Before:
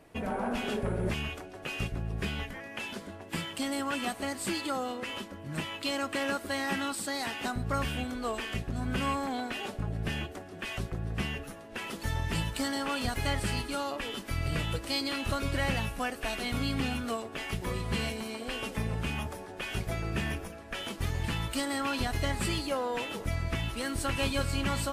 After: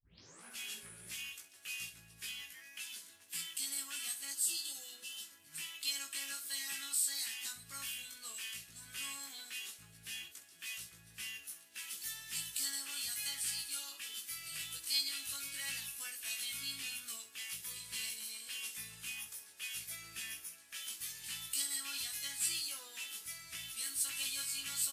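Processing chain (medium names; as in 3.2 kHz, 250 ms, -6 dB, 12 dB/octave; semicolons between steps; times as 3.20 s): tape start-up on the opening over 0.45 s; differentiator; doubling 12 ms -12.5 dB; early reflections 18 ms -3 dB, 65 ms -11 dB; spectral replace 4.36–5.29 s, 960–2600 Hz after; amplifier tone stack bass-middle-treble 6-0-2; trim +16.5 dB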